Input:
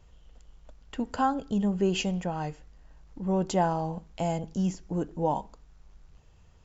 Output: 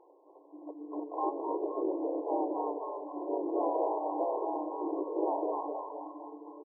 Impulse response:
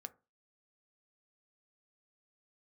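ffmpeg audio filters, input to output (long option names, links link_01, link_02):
-filter_complex "[0:a]afftfilt=real='re*pow(10,12/40*sin(2*PI*(1.4*log(max(b,1)*sr/1024/100)/log(2)-(0.39)*(pts-256)/sr)))':imag='im*pow(10,12/40*sin(2*PI*(1.4*log(max(b,1)*sr/1024/100)/log(2)-(0.39)*(pts-256)/sr)))':win_size=1024:overlap=0.75,acompressor=threshold=-32dB:ratio=6,asplit=4[link_01][link_02][link_03][link_04];[link_02]asetrate=33038,aresample=44100,atempo=1.33484,volume=-1dB[link_05];[link_03]asetrate=37084,aresample=44100,atempo=1.18921,volume=-5dB[link_06];[link_04]asetrate=52444,aresample=44100,atempo=0.840896,volume=-7dB[link_07];[link_01][link_05][link_06][link_07]amix=inputs=4:normalize=0,acontrast=49,alimiter=limit=-22.5dB:level=0:latency=1:release=79,asplit=2[link_08][link_09];[link_09]asplit=7[link_10][link_11][link_12][link_13][link_14][link_15][link_16];[link_10]adelay=259,afreqshift=140,volume=-4dB[link_17];[link_11]adelay=518,afreqshift=280,volume=-9.2dB[link_18];[link_12]adelay=777,afreqshift=420,volume=-14.4dB[link_19];[link_13]adelay=1036,afreqshift=560,volume=-19.6dB[link_20];[link_14]adelay=1295,afreqshift=700,volume=-24.8dB[link_21];[link_15]adelay=1554,afreqshift=840,volume=-30dB[link_22];[link_16]adelay=1813,afreqshift=980,volume=-35.2dB[link_23];[link_17][link_18][link_19][link_20][link_21][link_22][link_23]amix=inputs=7:normalize=0[link_24];[link_08][link_24]amix=inputs=2:normalize=0,afftfilt=real='re*between(b*sr/4096,280,1100)':imag='im*between(b*sr/4096,280,1100)':win_size=4096:overlap=0.75"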